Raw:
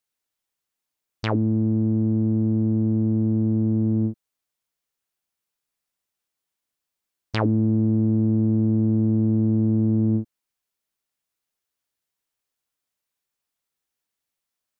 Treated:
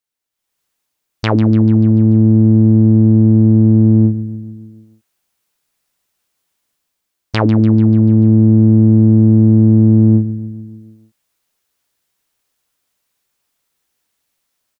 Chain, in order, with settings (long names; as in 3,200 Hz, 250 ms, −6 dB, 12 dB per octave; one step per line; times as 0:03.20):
automatic gain control gain up to 14 dB
repeating echo 146 ms, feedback 59%, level −13.5 dB
level −1 dB